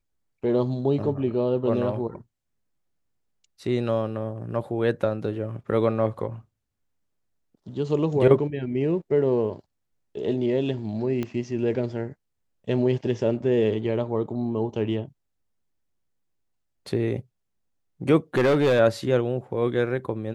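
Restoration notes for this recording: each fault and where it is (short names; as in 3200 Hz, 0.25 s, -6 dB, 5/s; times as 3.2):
11.23 pop -17 dBFS
18.37–18.8 clipped -16 dBFS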